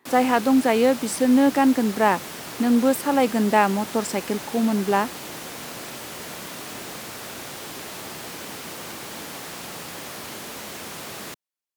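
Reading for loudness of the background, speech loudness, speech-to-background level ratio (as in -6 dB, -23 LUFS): -34.0 LUFS, -21.0 LUFS, 13.0 dB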